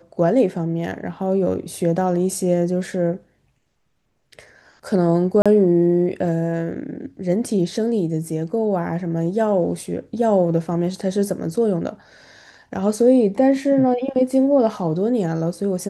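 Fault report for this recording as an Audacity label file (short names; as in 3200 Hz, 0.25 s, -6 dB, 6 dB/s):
5.420000	5.460000	gap 36 ms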